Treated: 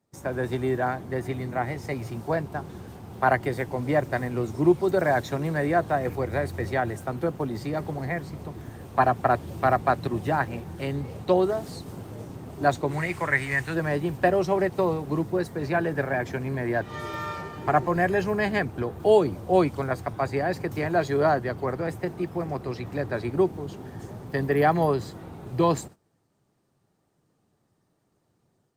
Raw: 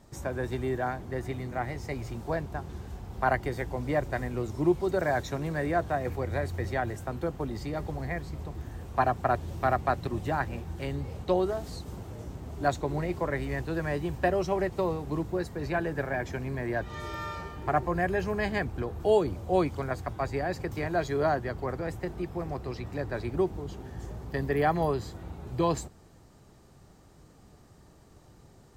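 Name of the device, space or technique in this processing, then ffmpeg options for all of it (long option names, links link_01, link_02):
video call: -filter_complex "[0:a]asplit=3[link_01][link_02][link_03];[link_01]afade=type=out:start_time=12.9:duration=0.02[link_04];[link_02]equalizer=frequency=250:width_type=o:width=1:gain=-6,equalizer=frequency=500:width_type=o:width=1:gain=-6,equalizer=frequency=2000:width_type=o:width=1:gain=10,equalizer=frequency=8000:width_type=o:width=1:gain=8,afade=type=in:start_time=12.9:duration=0.02,afade=type=out:start_time=13.73:duration=0.02[link_05];[link_03]afade=type=in:start_time=13.73:duration=0.02[link_06];[link_04][link_05][link_06]amix=inputs=3:normalize=0,highpass=frequency=100:width=0.5412,highpass=frequency=100:width=1.3066,dynaudnorm=framelen=160:gausssize=3:maxgain=5dB,agate=range=-17dB:threshold=-42dB:ratio=16:detection=peak" -ar 48000 -c:a libopus -b:a 32k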